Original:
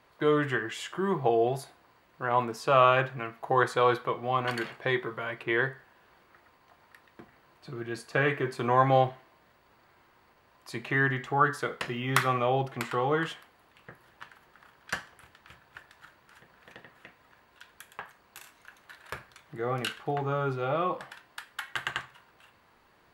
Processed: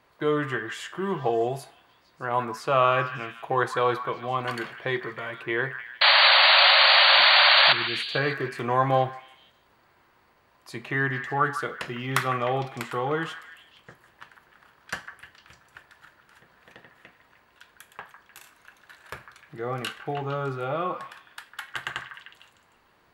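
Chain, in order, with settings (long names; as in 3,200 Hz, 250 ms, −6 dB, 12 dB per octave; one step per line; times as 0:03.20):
0:06.01–0:07.73: sound drawn into the spectrogram noise 540–4,700 Hz −17 dBFS
0:08.24–0:09.07: surface crackle 14 per second −37 dBFS
echo through a band-pass that steps 152 ms, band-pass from 1,400 Hz, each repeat 0.7 octaves, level −8 dB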